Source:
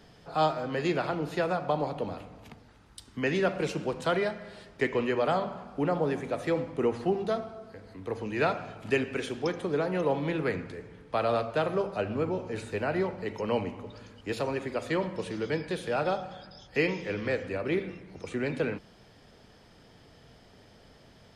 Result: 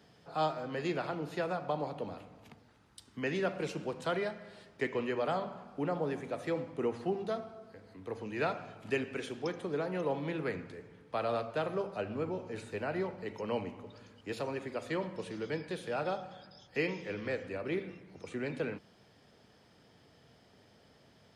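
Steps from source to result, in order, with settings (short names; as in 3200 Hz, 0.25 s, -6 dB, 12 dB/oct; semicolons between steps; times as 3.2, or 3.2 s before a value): HPF 86 Hz; gain -6 dB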